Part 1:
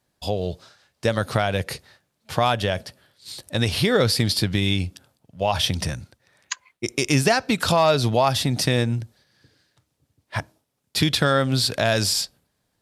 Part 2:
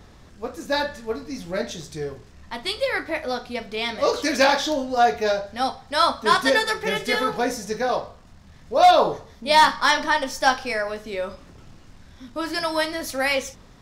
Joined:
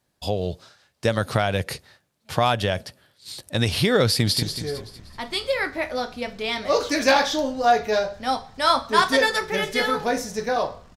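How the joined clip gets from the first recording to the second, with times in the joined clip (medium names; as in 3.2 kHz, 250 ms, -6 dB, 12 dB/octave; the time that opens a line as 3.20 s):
part 1
4.07–4.43 s: echo throw 190 ms, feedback 45%, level -8.5 dB
4.43 s: go over to part 2 from 1.76 s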